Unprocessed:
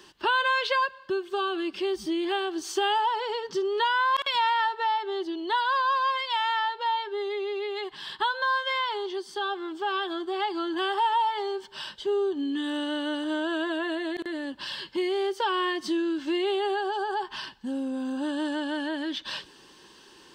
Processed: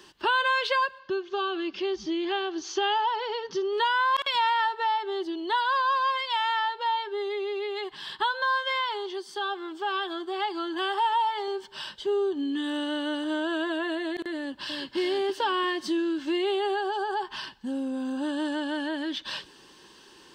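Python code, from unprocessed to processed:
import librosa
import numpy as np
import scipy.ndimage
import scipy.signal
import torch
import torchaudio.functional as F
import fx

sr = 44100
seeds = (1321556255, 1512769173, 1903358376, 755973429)

y = fx.ellip_lowpass(x, sr, hz=6400.0, order=4, stop_db=40, at=(0.99, 3.73))
y = fx.low_shelf(y, sr, hz=260.0, db=-6.5, at=(8.8, 11.48))
y = fx.echo_throw(y, sr, start_s=14.35, length_s=0.61, ms=340, feedback_pct=45, wet_db=-4.5)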